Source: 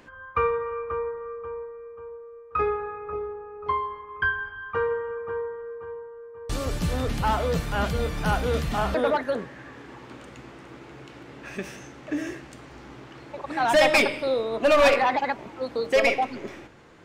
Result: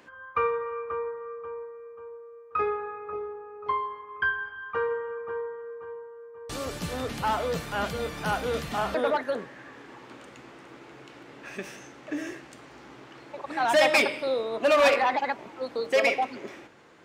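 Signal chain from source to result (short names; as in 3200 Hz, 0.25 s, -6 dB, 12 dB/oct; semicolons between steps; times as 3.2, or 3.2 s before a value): HPF 260 Hz 6 dB/oct; gain -1.5 dB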